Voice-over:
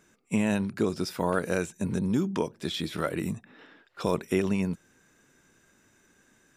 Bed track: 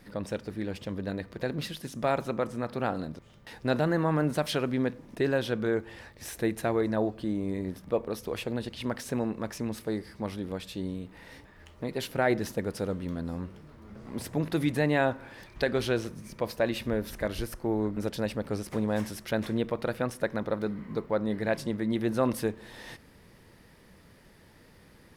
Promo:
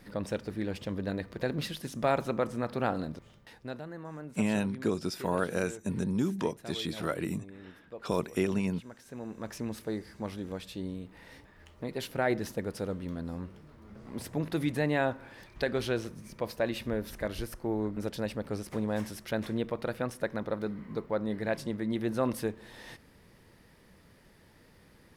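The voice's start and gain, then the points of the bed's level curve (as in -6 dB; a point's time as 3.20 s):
4.05 s, -3.0 dB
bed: 3.27 s 0 dB
3.84 s -16.5 dB
9.01 s -16.5 dB
9.52 s -3 dB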